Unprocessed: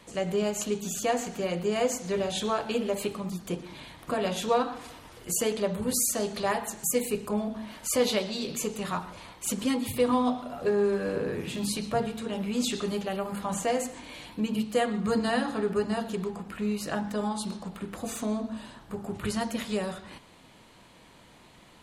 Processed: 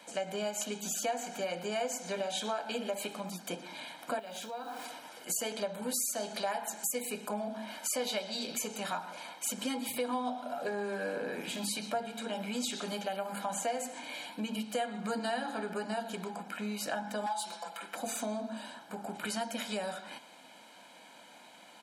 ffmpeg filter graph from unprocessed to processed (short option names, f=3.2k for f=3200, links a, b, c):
-filter_complex "[0:a]asettb=1/sr,asplit=3[a][b][c];[a]atrim=end=4.194[d];[b]atrim=start=4.19:end=4.85,asetpts=PTS-STARTPTS,afade=t=in:d=0.004:c=qsin,afade=t=out:st=0.656:d=0.004:c=qsin,acrusher=bits=9:dc=4:mix=0:aa=0.000001,acompressor=threshold=-37dB:ratio=12:attack=3.2:release=140:knee=1:detection=peak[e];[c]atrim=start=4.846[f];[d][e]acrossfade=d=0.004:c1=hsin:c2=qsin[g];[g][f]acrossfade=d=0.004:c1=qsin:c2=hsin,asettb=1/sr,asplit=3[h][i][j];[h]atrim=end=17.264[k];[i]atrim=start=17.26:end=17.95,asetpts=PTS-STARTPTS,afade=t=in:d=0.004:c=qsin,afade=t=out:st=0.686:d=0.004:c=qsin,aeval=exprs='0.0596*(abs(mod(val(0)/0.0596+3,4)-2)-1)':c=same,highpass=570,aecho=1:1:5.9:0.86,atrim=end_sample=30429[l];[j]atrim=start=17.946[m];[k][l]acrossfade=d=0.004:c1=hsin:c2=qsin[n];[n][m]acrossfade=d=0.004:c1=qsin:c2=hsin,highpass=f=250:w=0.5412,highpass=f=250:w=1.3066,aecho=1:1:1.3:0.66,acompressor=threshold=-33dB:ratio=3"